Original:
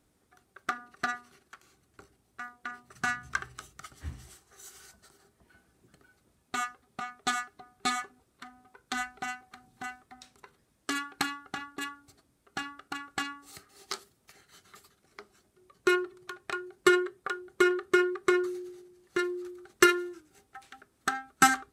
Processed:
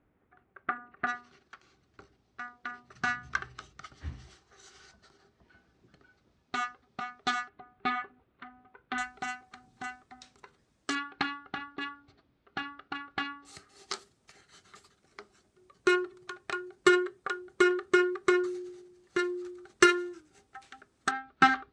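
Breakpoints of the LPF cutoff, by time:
LPF 24 dB/oct
2400 Hz
from 1.07 s 5600 Hz
from 7.49 s 3000 Hz
from 8.98 s 7600 Hz
from 10.95 s 4000 Hz
from 13.45 s 8300 Hz
from 21.11 s 4100 Hz

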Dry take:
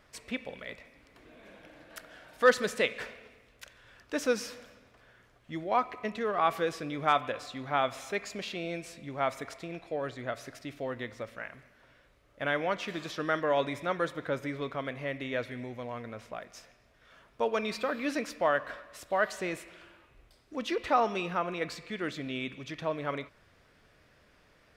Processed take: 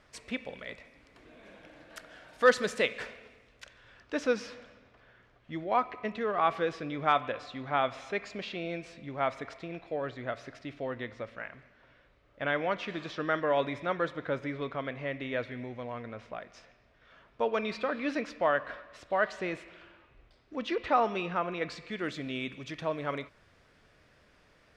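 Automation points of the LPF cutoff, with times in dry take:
3.18 s 8800 Hz
4.39 s 4100 Hz
21.5 s 4100 Hz
22.23 s 10000 Hz

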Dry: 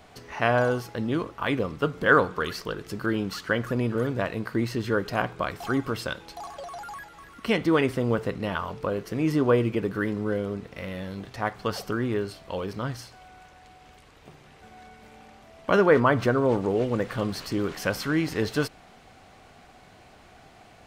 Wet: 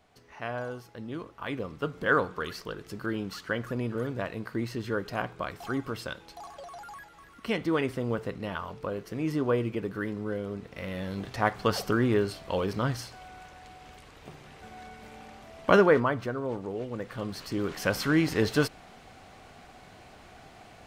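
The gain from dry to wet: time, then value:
0.81 s -12.5 dB
1.96 s -5.5 dB
10.4 s -5.5 dB
11.3 s +2.5 dB
15.7 s +2.5 dB
16.23 s -10 dB
16.9 s -10 dB
18.04 s +1 dB

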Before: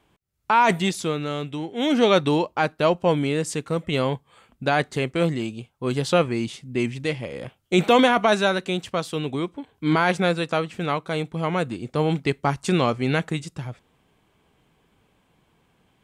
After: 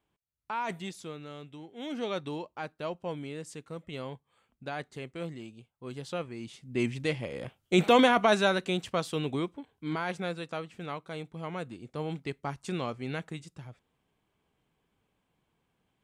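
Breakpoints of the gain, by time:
6.36 s -16 dB
6.83 s -4.5 dB
9.38 s -4.5 dB
9.9 s -13 dB

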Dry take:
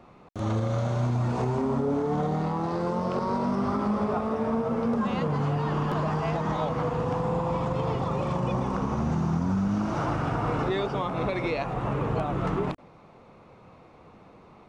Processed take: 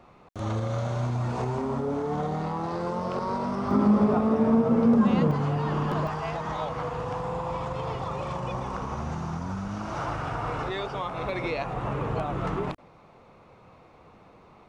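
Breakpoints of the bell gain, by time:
bell 230 Hz 1.9 oct
-4 dB
from 3.71 s +7.5 dB
from 5.31 s 0 dB
from 6.07 s -9.5 dB
from 11.29 s -3.5 dB

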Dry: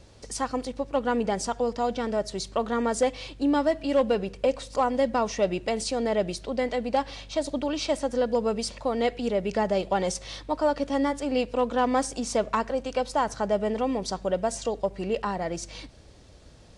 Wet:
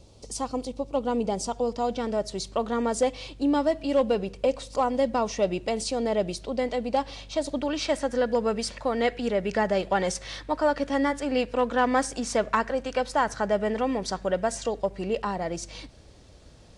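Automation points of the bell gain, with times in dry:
bell 1700 Hz 0.73 oct
1.36 s -14.5 dB
1.97 s -4 dB
7.19 s -4 dB
7.9 s +7 dB
14.46 s +7 dB
15.09 s -1 dB

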